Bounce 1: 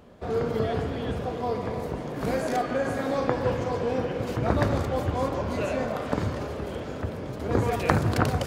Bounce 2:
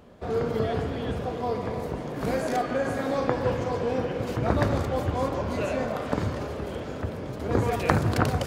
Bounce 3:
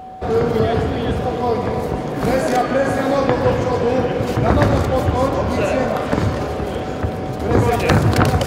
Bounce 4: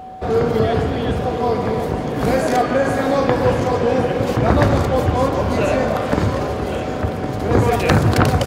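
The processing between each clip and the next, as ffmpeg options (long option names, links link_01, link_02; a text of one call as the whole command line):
ffmpeg -i in.wav -af anull out.wav
ffmpeg -i in.wav -af "aeval=exprs='0.631*sin(PI/2*2*val(0)/0.631)':channel_layout=same,aeval=exprs='val(0)+0.0251*sin(2*PI*750*n/s)':channel_layout=same" out.wav
ffmpeg -i in.wav -af "aecho=1:1:1111:0.266" out.wav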